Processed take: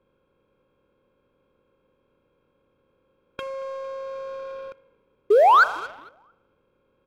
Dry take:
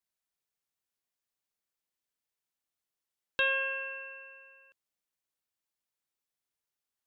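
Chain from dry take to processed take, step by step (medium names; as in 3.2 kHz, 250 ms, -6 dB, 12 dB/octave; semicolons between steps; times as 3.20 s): spectral levelling over time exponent 0.4; compression 6:1, threshold -35 dBFS, peak gain reduction 12 dB; formant shift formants -2 st; painted sound rise, 5.30–5.64 s, 380–1600 Hz -19 dBFS; peaking EQ 4.5 kHz +11.5 dB 1.7 oct; level-controlled noise filter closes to 470 Hz, open at -22 dBFS; on a send: frequency-shifting echo 226 ms, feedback 43%, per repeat -45 Hz, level -23 dB; on the sum: spring tank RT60 1.1 s, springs 37 ms, chirp 65 ms, DRR 15.5 dB; in parallel at -5 dB: crossover distortion -42 dBFS; on the sum: waveshaping leveller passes 1; trim -1.5 dB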